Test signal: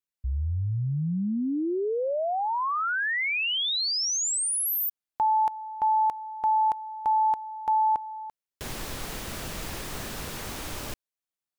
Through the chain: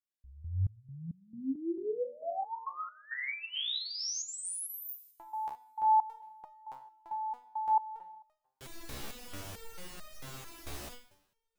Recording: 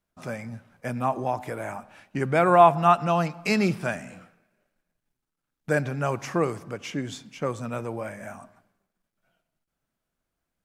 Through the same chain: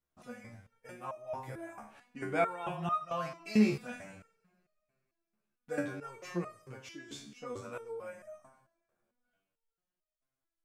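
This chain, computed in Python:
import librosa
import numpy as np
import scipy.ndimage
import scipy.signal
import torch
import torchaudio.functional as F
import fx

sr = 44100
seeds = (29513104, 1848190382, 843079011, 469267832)

y = fx.rev_double_slope(x, sr, seeds[0], early_s=0.67, late_s=3.2, knee_db=-27, drr_db=7.5)
y = fx.resonator_held(y, sr, hz=4.5, low_hz=71.0, high_hz=620.0)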